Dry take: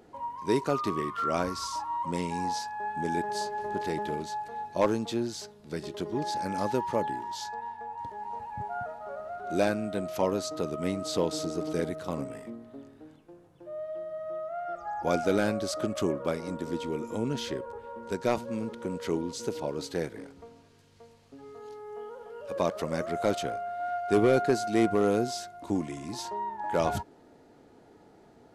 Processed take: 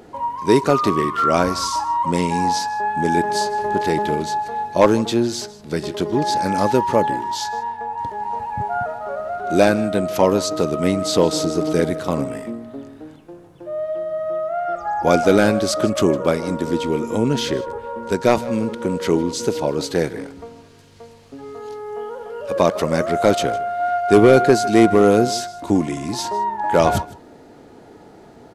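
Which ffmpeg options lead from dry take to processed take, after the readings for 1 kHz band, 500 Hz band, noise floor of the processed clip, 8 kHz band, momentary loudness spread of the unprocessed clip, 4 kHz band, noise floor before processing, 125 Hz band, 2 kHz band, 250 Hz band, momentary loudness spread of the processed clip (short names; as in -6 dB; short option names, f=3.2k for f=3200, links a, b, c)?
+12.0 dB, +12.0 dB, -45 dBFS, +12.0 dB, 13 LU, +12.0 dB, -57 dBFS, +12.0 dB, +12.0 dB, +12.0 dB, 13 LU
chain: -af "aecho=1:1:156:0.106,acontrast=80,volume=5dB"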